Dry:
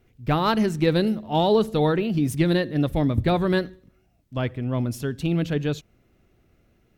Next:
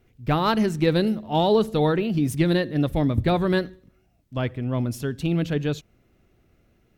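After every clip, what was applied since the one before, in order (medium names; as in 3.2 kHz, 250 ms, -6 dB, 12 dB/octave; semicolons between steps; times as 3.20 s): no audible change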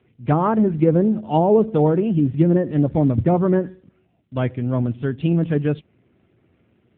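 low-pass that closes with the level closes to 920 Hz, closed at -16.5 dBFS; trim +5 dB; AMR-NB 7.4 kbps 8 kHz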